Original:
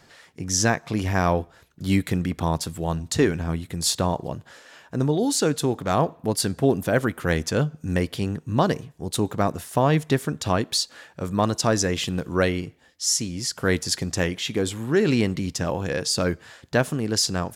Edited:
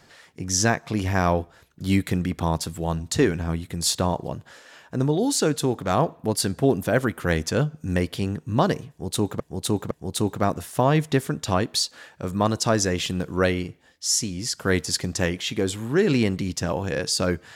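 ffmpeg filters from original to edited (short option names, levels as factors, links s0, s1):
-filter_complex "[0:a]asplit=3[s0][s1][s2];[s0]atrim=end=9.402[s3];[s1]atrim=start=8.888:end=9.402[s4];[s2]atrim=start=8.888[s5];[s3][s4]acrossfade=d=0.004:c1=hsin:c2=hsin[s6];[s6][s5]acrossfade=d=0.004:c1=hsin:c2=hsin"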